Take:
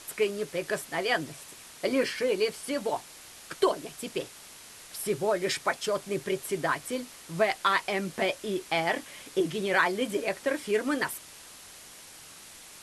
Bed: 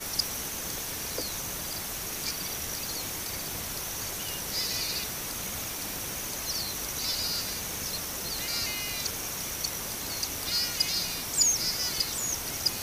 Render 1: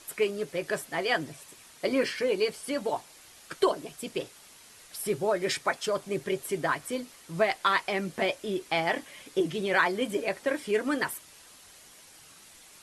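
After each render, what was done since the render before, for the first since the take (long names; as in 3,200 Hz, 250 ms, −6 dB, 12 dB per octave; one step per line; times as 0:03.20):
broadband denoise 6 dB, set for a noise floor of −49 dBFS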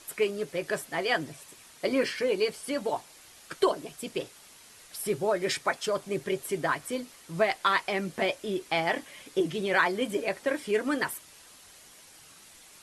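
no processing that can be heard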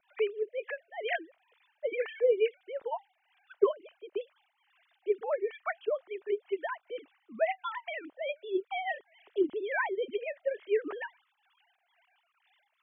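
three sine waves on the formant tracks
two-band tremolo in antiphase 2.2 Hz, depth 70%, crossover 630 Hz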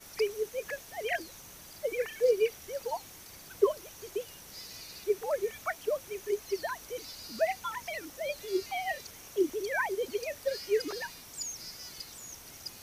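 mix in bed −15 dB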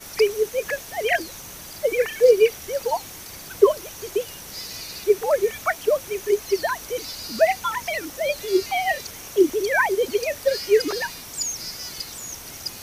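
level +11 dB
brickwall limiter −2 dBFS, peak gain reduction 1 dB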